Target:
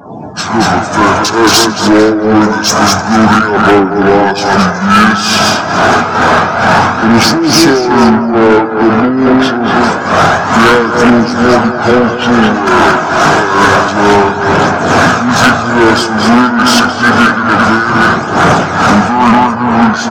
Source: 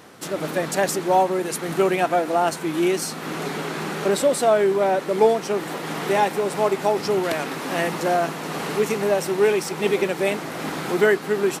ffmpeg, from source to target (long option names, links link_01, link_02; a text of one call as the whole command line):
ffmpeg -i in.wav -filter_complex "[0:a]asplit=2[link_01][link_02];[link_02]acompressor=threshold=-26dB:ratio=6,volume=1dB[link_03];[link_01][link_03]amix=inputs=2:normalize=0,aphaser=in_gain=1:out_gain=1:delay=1.9:decay=0.33:speed=0.47:type=triangular,asplit=2[link_04][link_05];[link_05]aecho=0:1:130|260|390|520|650:0.473|0.194|0.0795|0.0326|0.0134[link_06];[link_04][link_06]amix=inputs=2:normalize=0,apsyclip=10.5dB,afftdn=noise_reduction=32:noise_floor=-29,aeval=exprs='1.06*(cos(1*acos(clip(val(0)/1.06,-1,1)))-cos(1*PI/2))+0.0237*(cos(4*acos(clip(val(0)/1.06,-1,1)))-cos(4*PI/2))':channel_layout=same,superequalizer=10b=2.24:11b=2.24:12b=3.98:16b=1.58,asetrate=25442,aresample=44100,highpass=130,tremolo=f=2.3:d=0.76,highshelf=frequency=3800:gain=4,acontrast=83,volume=-1dB" out.wav